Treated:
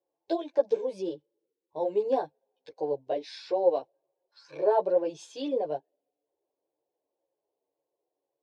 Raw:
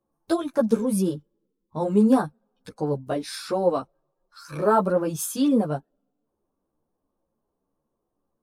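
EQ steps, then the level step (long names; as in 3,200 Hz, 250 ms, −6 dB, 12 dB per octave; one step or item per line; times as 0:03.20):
band-pass filter 340–6,000 Hz
high-frequency loss of the air 150 metres
phaser with its sweep stopped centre 530 Hz, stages 4
0.0 dB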